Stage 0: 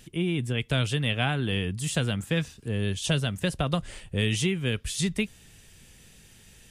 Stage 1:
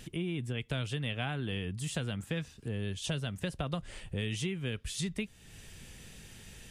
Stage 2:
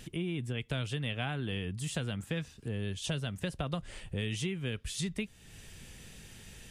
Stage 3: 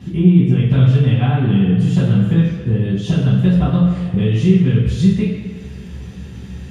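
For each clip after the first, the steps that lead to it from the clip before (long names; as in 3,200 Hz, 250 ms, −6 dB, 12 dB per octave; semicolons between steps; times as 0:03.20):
high-shelf EQ 5,400 Hz −4.5 dB; downward compressor 2 to 1, threshold −45 dBFS, peak gain reduction 13.5 dB; level +3.5 dB
no processing that can be heard
convolution reverb RT60 1.8 s, pre-delay 3 ms, DRR −9.5 dB; level −9 dB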